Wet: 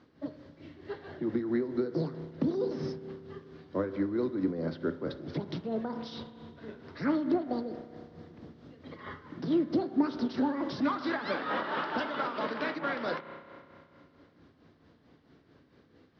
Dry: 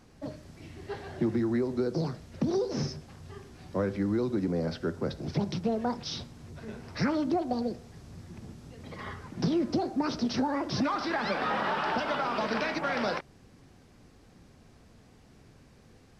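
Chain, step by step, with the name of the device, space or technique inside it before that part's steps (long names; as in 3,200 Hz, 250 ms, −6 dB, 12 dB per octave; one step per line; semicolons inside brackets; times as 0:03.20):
combo amplifier with spring reverb and tremolo (spring reverb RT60 2.6 s, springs 31 ms, chirp 50 ms, DRR 9.5 dB; amplitude tremolo 4.5 Hz, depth 55%; loudspeaker in its box 110–4,100 Hz, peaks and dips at 120 Hz −6 dB, 200 Hz −6 dB, 290 Hz +5 dB, 770 Hz −6 dB, 2,500 Hz −7 dB)
0:10.37–0:12.39: high-shelf EQ 5,800 Hz +7 dB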